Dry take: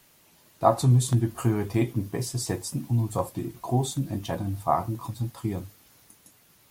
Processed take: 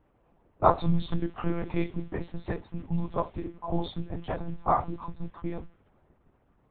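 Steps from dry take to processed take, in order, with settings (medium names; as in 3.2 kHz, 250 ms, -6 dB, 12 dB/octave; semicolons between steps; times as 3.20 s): dynamic bell 180 Hz, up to -6 dB, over -35 dBFS, Q 0.76; level-controlled noise filter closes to 860 Hz, open at -21 dBFS; monotone LPC vocoder at 8 kHz 170 Hz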